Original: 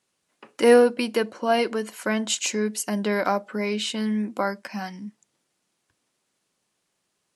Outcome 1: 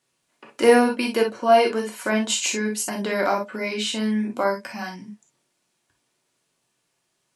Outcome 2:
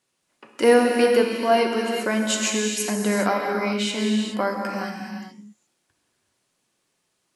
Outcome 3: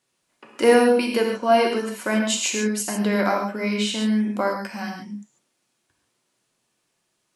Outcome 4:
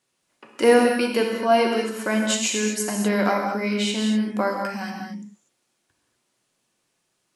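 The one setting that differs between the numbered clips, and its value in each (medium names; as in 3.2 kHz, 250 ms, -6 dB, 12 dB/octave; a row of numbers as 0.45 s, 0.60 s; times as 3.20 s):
gated-style reverb, gate: 80 ms, 450 ms, 170 ms, 270 ms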